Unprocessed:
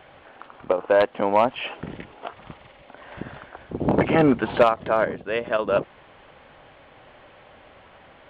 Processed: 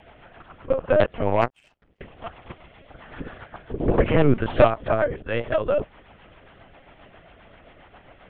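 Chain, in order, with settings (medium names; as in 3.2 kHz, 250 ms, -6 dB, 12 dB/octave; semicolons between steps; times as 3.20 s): LPC vocoder at 8 kHz pitch kept; rotary cabinet horn 7.5 Hz; 1.41–2.01 s: power-law waveshaper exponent 2; trim +2.5 dB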